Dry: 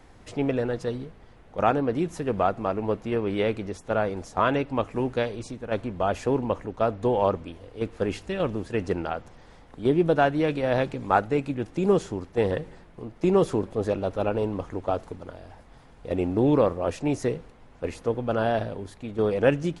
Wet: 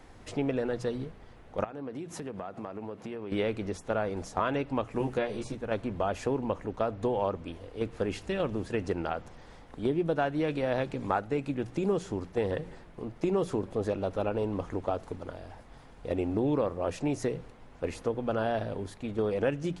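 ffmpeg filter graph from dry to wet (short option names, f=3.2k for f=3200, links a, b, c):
-filter_complex "[0:a]asettb=1/sr,asplit=3[a][b][c];[a]atrim=end=1.644[d];[b]atrim=start=1.64:end=3.32,asetpts=PTS-STARTPTS,afade=t=in:d=0.004:c=qsin,afade=t=out:st=1.676:d=0.004:c=qsin,highpass=110,acompressor=threshold=-34dB:ratio=12:attack=3.2:release=140:knee=1:detection=peak[e];[c]atrim=start=3.316[f];[d][e]acrossfade=d=0.004:c1=hsin:c2=qsin[g];[g][f]acrossfade=d=0.004:c1=qsin:c2=hsin,asettb=1/sr,asplit=3[h][i][j];[h]atrim=end=4.994[k];[i]atrim=start=4.99:end=5.55,asetpts=PTS-STARTPTS,afade=t=in:d=0.004:c=qsin,afade=t=out:st=0.556:d=0.004:c=qsin,acrossover=split=2900[l][m];[m]acompressor=threshold=-53dB:ratio=4:attack=1:release=60[n];[l][n]amix=inputs=2:normalize=0,highshelf=f=6.5k:g=8,asplit=2[o][p];[p]adelay=14,volume=-2.5dB[q];[o][q]amix=inputs=2:normalize=0,atrim=end_sample=24696[r];[j]atrim=start=5.546[s];[k][r]acrossfade=d=0.004:c1=hsin:c2=qsin[t];[t][s]acrossfade=d=0.004:c1=qsin:c2=hsin,bandreject=f=60:t=h:w=6,bandreject=f=120:t=h:w=6,bandreject=f=180:t=h:w=6,acompressor=threshold=-28dB:ratio=2.5"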